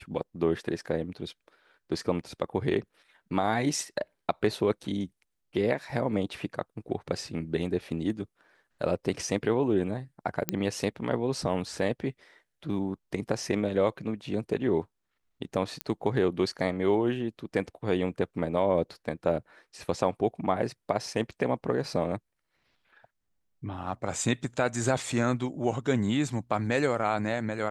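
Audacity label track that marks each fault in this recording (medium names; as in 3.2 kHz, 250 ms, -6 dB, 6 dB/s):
10.490000	10.490000	pop -9 dBFS
15.810000	15.810000	pop -15 dBFS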